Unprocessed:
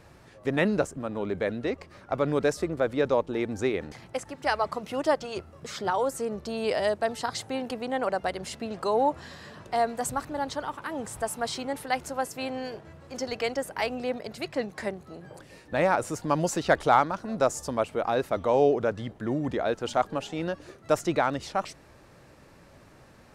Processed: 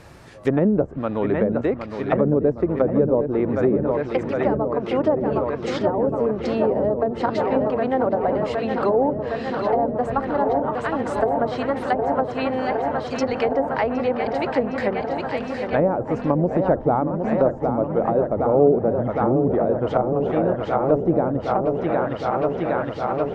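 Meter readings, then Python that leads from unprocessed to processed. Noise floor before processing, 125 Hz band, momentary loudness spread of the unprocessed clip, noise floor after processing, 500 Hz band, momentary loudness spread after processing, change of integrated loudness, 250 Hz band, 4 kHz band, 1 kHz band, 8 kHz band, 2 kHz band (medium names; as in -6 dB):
-54 dBFS, +10.0 dB, 11 LU, -32 dBFS, +8.0 dB, 5 LU, +7.0 dB, +10.0 dB, -2.5 dB, +5.0 dB, under -10 dB, +1.0 dB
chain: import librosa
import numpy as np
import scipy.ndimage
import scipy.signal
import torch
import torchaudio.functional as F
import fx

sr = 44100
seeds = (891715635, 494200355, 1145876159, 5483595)

y = fx.echo_filtered(x, sr, ms=763, feedback_pct=85, hz=4600.0, wet_db=-7.5)
y = fx.env_lowpass_down(y, sr, base_hz=500.0, full_db=-21.5)
y = F.gain(torch.from_numpy(y), 8.0).numpy()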